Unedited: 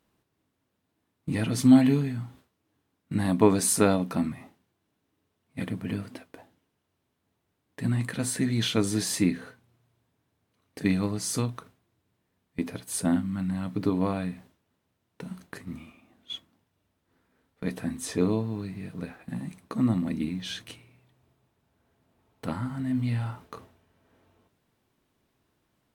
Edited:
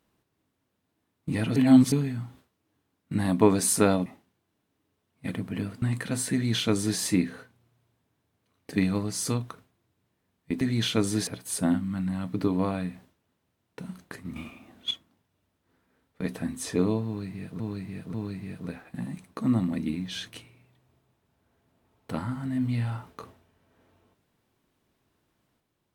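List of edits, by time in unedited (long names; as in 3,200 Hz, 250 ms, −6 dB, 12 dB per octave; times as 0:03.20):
0:01.56–0:01.92: reverse
0:04.06–0:04.39: remove
0:06.15–0:07.90: remove
0:08.41–0:09.07: duplicate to 0:12.69
0:15.78–0:16.33: clip gain +8.5 dB
0:18.48–0:19.02: repeat, 3 plays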